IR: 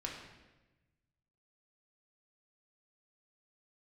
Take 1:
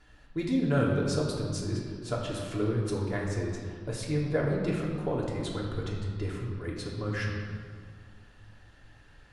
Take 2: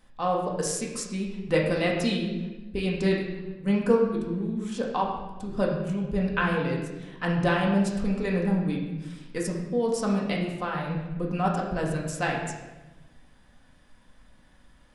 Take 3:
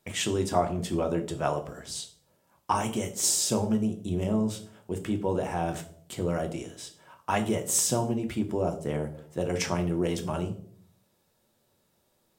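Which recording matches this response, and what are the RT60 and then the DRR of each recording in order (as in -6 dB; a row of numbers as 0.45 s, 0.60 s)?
2; 2.1 s, 1.1 s, 0.60 s; -4.0 dB, -2.0 dB, 4.5 dB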